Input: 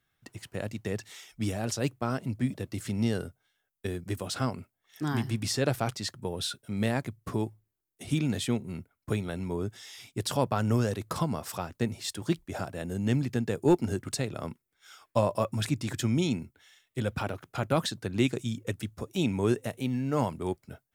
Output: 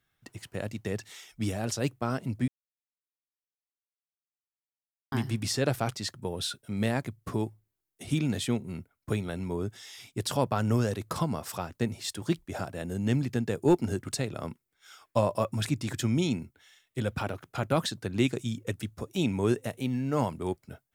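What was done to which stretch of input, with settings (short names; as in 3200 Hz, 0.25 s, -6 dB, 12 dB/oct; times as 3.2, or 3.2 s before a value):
2.48–5.12 mute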